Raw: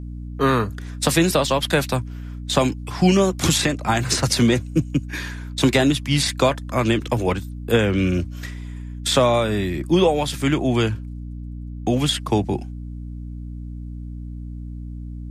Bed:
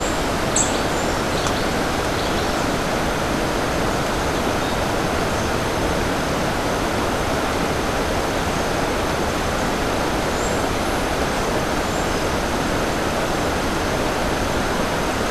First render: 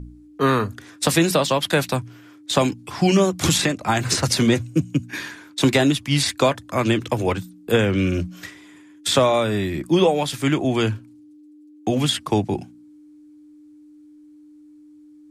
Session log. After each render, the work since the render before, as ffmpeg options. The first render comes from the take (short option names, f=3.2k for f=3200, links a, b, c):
-af "bandreject=f=60:t=h:w=4,bandreject=f=120:t=h:w=4,bandreject=f=180:t=h:w=4,bandreject=f=240:t=h:w=4"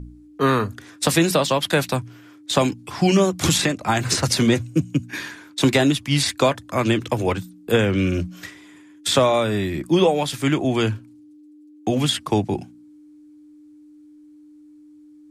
-af anull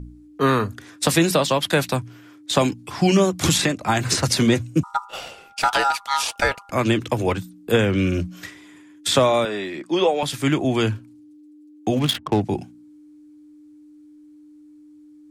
-filter_complex "[0:a]asettb=1/sr,asplit=3[a][b][c];[a]atrim=end=4.834[d];[b]atrim=start=4.83:end=6.71,asetpts=PTS-STARTPTS,afade=t=in:d=0.004:c=qsin,afade=t=out:st=1.876:d=0.004:c=qsin,aeval=exprs='val(0)*sin(2*PI*1100*n/s)':c=same[e];[c]atrim=start=6.706[f];[d][e]acrossfade=d=0.004:c1=hsin:c2=qsin[g];[g][f]acrossfade=d=0.004:c1=qsin:c2=hsin,asettb=1/sr,asplit=3[h][i][j];[h]atrim=end=9.454[k];[i]atrim=start=9.45:end=10.23,asetpts=PTS-STARTPTS,afade=t=in:d=0.004:c=qsin,afade=t=out:st=0.776:d=0.004:c=qsin,highpass=360,lowpass=6.1k[l];[j]atrim=start=10.226[m];[k][l]acrossfade=d=0.004:c1=hsin:c2=qsin[n];[n][m]acrossfade=d=0.004:c1=qsin:c2=hsin,asettb=1/sr,asplit=3[o][p][q];[o]atrim=end=11.994[r];[p]atrim=start=11.99:end=12.41,asetpts=PTS-STARTPTS,afade=t=in:d=0.004:c=qsin,afade=t=out:st=0.416:d=0.004:c=qsin,adynamicsmooth=sensitivity=3:basefreq=640[s];[q]atrim=start=12.406[t];[r][s]acrossfade=d=0.004:c1=hsin:c2=qsin[u];[u][t]acrossfade=d=0.004:c1=qsin:c2=hsin"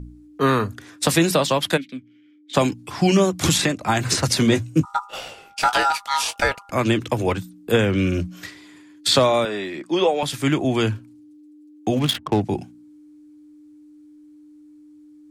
-filter_complex "[0:a]asplit=3[a][b][c];[a]afade=t=out:st=1.76:d=0.02[d];[b]asplit=3[e][f][g];[e]bandpass=f=270:t=q:w=8,volume=0dB[h];[f]bandpass=f=2.29k:t=q:w=8,volume=-6dB[i];[g]bandpass=f=3.01k:t=q:w=8,volume=-9dB[j];[h][i][j]amix=inputs=3:normalize=0,afade=t=in:st=1.76:d=0.02,afade=t=out:st=2.53:d=0.02[k];[c]afade=t=in:st=2.53:d=0.02[l];[d][k][l]amix=inputs=3:normalize=0,asettb=1/sr,asplit=3[m][n][o];[m]atrim=end=4.494[p];[n]atrim=start=4.49:end=6.42,asetpts=PTS-STARTPTS,afade=t=in:d=0.004:c=qsin,afade=t=out:st=1.926:d=0.004:c=qsin,asplit=2[q][r];[r]adelay=19,volume=-8.5dB[s];[q][s]amix=inputs=2:normalize=0,atrim=end_sample=85113[t];[o]atrim=start=6.416[u];[p][t]acrossfade=d=0.004:c1=hsin:c2=qsin[v];[v][u]acrossfade=d=0.004:c1=qsin:c2=hsin,asettb=1/sr,asplit=3[w][x][y];[w]atrim=end=8.454[z];[x]atrim=start=8.45:end=9.27,asetpts=PTS-STARTPTS,afade=t=in:d=0.004:c=qsin,afade=t=out:st=0.816:d=0.004:c=qsin,equalizer=f=4.4k:t=o:w=0.27:g=11[aa];[y]atrim=start=9.266[ab];[z][aa]acrossfade=d=0.004:c1=hsin:c2=qsin[ac];[ac][ab]acrossfade=d=0.004:c1=qsin:c2=hsin"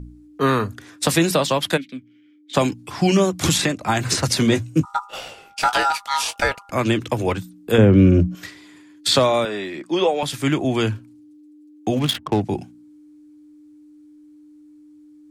-filter_complex "[0:a]asettb=1/sr,asplit=3[a][b][c];[a]atrim=end=7.784[d];[b]atrim=start=7.78:end=8.35,asetpts=PTS-STARTPTS,afade=t=in:d=0.004:c=qsin,afade=t=out:st=0.566:d=0.004:c=qsin,tiltshelf=f=1.2k:g=9[e];[c]atrim=start=8.346[f];[d][e]acrossfade=d=0.004:c1=hsin:c2=qsin[g];[g][f]acrossfade=d=0.004:c1=qsin:c2=hsin"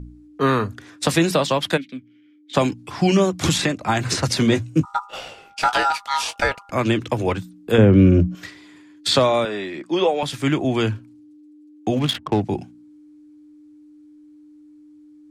-af "highshelf=f=9.5k:g=-10.5"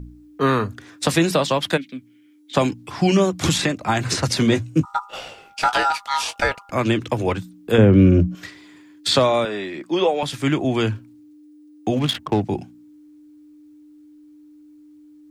-af "acrusher=bits=11:mix=0:aa=0.000001"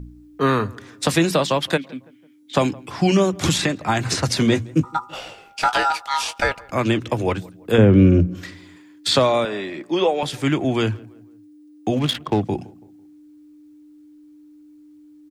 -filter_complex "[0:a]asplit=2[a][b];[b]adelay=166,lowpass=f=1.6k:p=1,volume=-23dB,asplit=2[c][d];[d]adelay=166,lowpass=f=1.6k:p=1,volume=0.46,asplit=2[e][f];[f]adelay=166,lowpass=f=1.6k:p=1,volume=0.46[g];[a][c][e][g]amix=inputs=4:normalize=0"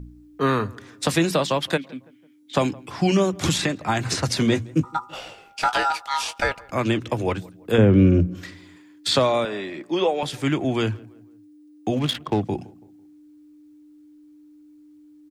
-af "volume=-2.5dB"